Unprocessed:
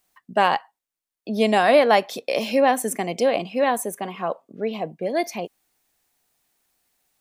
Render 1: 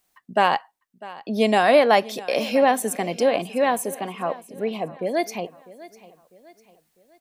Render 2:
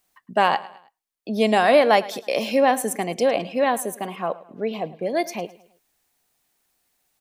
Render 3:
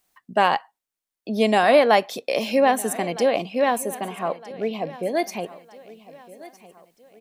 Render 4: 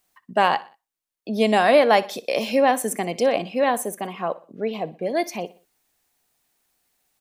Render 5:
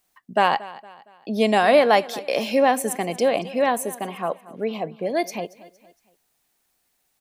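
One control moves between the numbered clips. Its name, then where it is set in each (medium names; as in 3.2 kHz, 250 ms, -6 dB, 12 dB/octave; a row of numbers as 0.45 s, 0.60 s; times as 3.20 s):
feedback delay, time: 650 ms, 107 ms, 1261 ms, 61 ms, 231 ms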